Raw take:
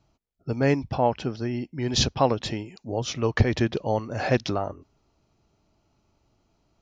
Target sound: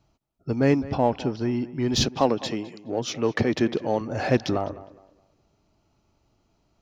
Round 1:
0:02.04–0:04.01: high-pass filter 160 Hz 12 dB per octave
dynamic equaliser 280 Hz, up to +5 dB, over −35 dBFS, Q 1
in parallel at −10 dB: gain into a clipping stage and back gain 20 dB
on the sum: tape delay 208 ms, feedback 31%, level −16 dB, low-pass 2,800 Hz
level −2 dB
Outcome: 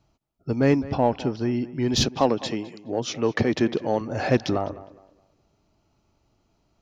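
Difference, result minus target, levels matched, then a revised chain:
gain into a clipping stage and back: distortion −4 dB
0:02.04–0:04.01: high-pass filter 160 Hz 12 dB per octave
dynamic equaliser 280 Hz, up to +5 dB, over −35 dBFS, Q 1
in parallel at −10 dB: gain into a clipping stage and back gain 27 dB
on the sum: tape delay 208 ms, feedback 31%, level −16 dB, low-pass 2,800 Hz
level −2 dB

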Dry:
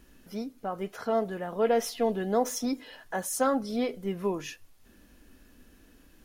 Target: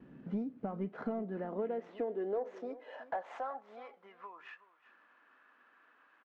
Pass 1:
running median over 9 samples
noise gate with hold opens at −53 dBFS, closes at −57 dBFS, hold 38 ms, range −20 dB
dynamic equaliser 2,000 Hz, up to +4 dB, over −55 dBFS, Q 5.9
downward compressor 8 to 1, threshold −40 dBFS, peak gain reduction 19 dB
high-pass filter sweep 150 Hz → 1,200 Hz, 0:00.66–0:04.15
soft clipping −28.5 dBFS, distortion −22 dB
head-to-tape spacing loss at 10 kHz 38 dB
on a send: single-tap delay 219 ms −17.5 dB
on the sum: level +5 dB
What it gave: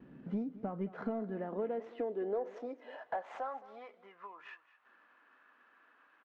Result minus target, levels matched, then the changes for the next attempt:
echo 153 ms early
change: single-tap delay 372 ms −17.5 dB

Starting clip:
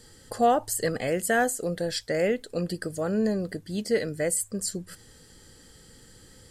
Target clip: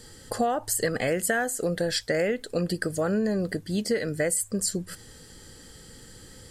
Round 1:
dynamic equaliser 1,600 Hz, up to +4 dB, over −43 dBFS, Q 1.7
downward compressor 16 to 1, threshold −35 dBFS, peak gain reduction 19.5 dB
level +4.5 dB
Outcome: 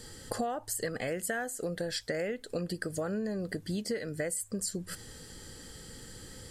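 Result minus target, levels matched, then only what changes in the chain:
downward compressor: peak gain reduction +8.5 dB
change: downward compressor 16 to 1, threshold −26 dBFS, peak gain reduction 11 dB

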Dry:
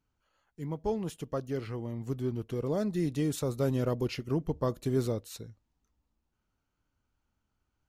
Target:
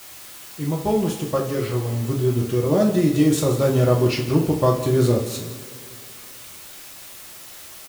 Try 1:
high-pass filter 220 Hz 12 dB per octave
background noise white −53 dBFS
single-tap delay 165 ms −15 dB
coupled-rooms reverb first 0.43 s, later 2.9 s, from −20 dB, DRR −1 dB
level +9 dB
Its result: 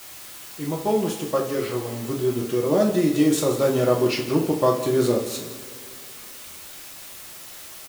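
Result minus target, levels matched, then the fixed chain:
125 Hz band −7.0 dB
high-pass filter 60 Hz 12 dB per octave
background noise white −53 dBFS
single-tap delay 165 ms −15 dB
coupled-rooms reverb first 0.43 s, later 2.9 s, from −20 dB, DRR −1 dB
level +9 dB

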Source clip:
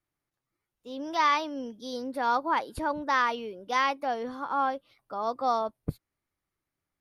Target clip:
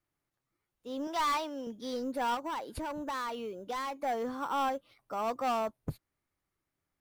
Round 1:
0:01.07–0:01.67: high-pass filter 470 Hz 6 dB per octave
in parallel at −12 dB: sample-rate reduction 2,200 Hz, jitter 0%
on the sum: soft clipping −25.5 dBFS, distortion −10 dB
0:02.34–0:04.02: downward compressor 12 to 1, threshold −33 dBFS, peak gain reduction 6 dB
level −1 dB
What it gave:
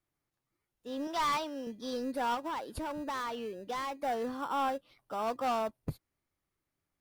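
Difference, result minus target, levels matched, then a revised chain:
sample-rate reduction: distortion +18 dB
0:01.07–0:01.67: high-pass filter 470 Hz 6 dB per octave
in parallel at −12 dB: sample-rate reduction 6,800 Hz, jitter 0%
on the sum: soft clipping −25.5 dBFS, distortion −9 dB
0:02.34–0:04.02: downward compressor 12 to 1, threshold −33 dBFS, peak gain reduction 6.5 dB
level −1 dB

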